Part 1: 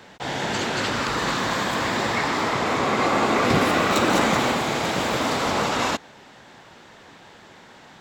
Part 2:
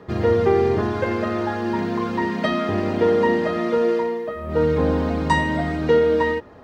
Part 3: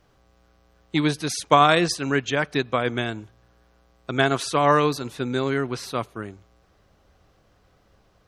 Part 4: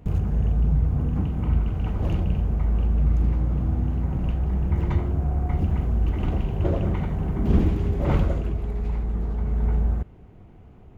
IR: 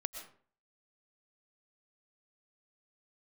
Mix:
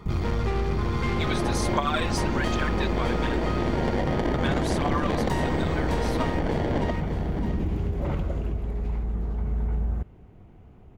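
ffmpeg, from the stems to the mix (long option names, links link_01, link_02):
-filter_complex "[0:a]acrusher=samples=34:mix=1:aa=0.000001,adynamicsmooth=sensitivity=0.5:basefreq=780,adelay=950,volume=1dB,asplit=2[link_01][link_02];[link_02]volume=-13dB[link_03];[1:a]highshelf=frequency=2500:gain=7.5,aecho=1:1:0.9:0.95,aeval=exprs='(tanh(11.2*val(0)+0.65)-tanh(0.65))/11.2':channel_layout=same,volume=-2.5dB,asplit=2[link_04][link_05];[link_05]volume=-5dB[link_06];[2:a]aphaser=in_gain=1:out_gain=1:delay=3.4:decay=0.64:speed=1.3:type=triangular,highpass=840,adelay=250,volume=-3.5dB[link_07];[3:a]alimiter=limit=-15.5dB:level=0:latency=1:release=63,volume=-2dB[link_08];[link_03][link_06]amix=inputs=2:normalize=0,aecho=0:1:611|1222|1833|2444:1|0.27|0.0729|0.0197[link_09];[link_01][link_04][link_07][link_08][link_09]amix=inputs=5:normalize=0,acompressor=threshold=-21dB:ratio=6"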